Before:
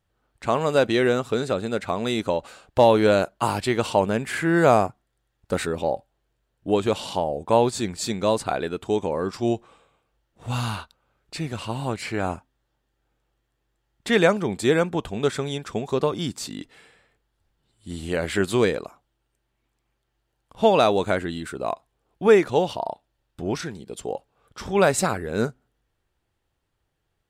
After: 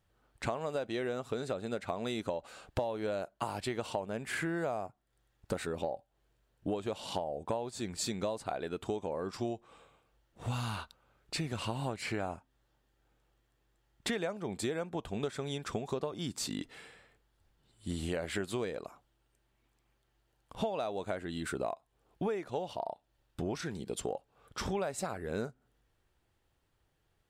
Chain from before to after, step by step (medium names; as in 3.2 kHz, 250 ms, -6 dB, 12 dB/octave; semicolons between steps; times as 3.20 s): dynamic bell 660 Hz, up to +5 dB, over -32 dBFS, Q 2; compression 12:1, threshold -32 dBFS, peak gain reduction 24 dB